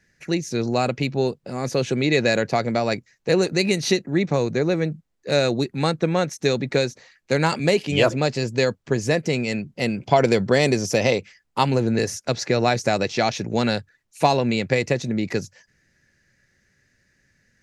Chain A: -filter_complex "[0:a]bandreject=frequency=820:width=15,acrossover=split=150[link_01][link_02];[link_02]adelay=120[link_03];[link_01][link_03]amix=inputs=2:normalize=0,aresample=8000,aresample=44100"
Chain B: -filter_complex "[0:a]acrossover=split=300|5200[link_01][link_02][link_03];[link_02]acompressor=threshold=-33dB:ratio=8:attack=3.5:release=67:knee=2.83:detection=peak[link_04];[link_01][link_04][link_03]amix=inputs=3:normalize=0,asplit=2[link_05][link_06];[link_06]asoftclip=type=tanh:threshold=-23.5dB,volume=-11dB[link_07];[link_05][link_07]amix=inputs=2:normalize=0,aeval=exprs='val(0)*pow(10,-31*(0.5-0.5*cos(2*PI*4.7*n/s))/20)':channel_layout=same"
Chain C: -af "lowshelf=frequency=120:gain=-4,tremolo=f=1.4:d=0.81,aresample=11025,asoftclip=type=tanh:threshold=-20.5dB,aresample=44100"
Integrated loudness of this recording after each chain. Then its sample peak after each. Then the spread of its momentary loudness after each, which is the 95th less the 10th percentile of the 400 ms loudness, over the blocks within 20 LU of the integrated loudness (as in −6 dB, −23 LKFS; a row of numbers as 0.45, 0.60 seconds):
−23.0, −32.0, −30.0 LKFS; −3.5, −13.5, −16.0 dBFS; 8, 8, 8 LU